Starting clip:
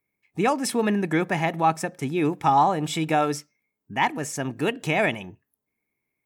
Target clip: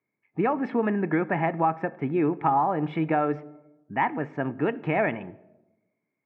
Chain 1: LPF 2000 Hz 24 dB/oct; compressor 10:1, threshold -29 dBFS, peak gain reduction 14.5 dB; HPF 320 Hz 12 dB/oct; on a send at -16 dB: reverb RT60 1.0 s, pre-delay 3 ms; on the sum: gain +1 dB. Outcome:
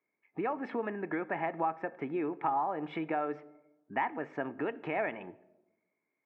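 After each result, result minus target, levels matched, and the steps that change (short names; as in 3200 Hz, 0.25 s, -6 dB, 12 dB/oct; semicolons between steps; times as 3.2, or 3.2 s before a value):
compressor: peak gain reduction +8 dB; 125 Hz band -8.0 dB
change: compressor 10:1, threshold -20 dBFS, peak gain reduction 6.5 dB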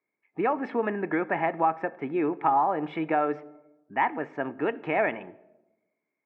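125 Hz band -9.0 dB
change: HPF 130 Hz 12 dB/oct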